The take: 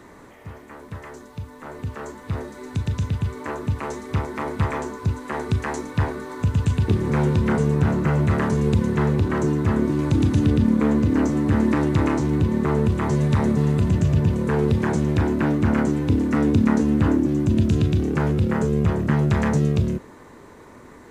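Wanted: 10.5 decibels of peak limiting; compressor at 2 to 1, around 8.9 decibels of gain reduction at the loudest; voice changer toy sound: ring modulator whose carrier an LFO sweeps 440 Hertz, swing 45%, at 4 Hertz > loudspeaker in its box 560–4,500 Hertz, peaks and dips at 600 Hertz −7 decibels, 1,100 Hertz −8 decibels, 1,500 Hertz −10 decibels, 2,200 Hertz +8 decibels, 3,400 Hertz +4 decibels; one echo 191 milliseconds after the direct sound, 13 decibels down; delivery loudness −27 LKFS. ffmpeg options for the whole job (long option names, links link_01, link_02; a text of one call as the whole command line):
ffmpeg -i in.wav -af "acompressor=threshold=-31dB:ratio=2,alimiter=level_in=1dB:limit=-24dB:level=0:latency=1,volume=-1dB,aecho=1:1:191:0.224,aeval=exprs='val(0)*sin(2*PI*440*n/s+440*0.45/4*sin(2*PI*4*n/s))':channel_layout=same,highpass=560,equalizer=frequency=600:width_type=q:width=4:gain=-7,equalizer=frequency=1100:width_type=q:width=4:gain=-8,equalizer=frequency=1500:width_type=q:width=4:gain=-10,equalizer=frequency=2200:width_type=q:width=4:gain=8,equalizer=frequency=3400:width_type=q:width=4:gain=4,lowpass=frequency=4500:width=0.5412,lowpass=frequency=4500:width=1.3066,volume=15.5dB" out.wav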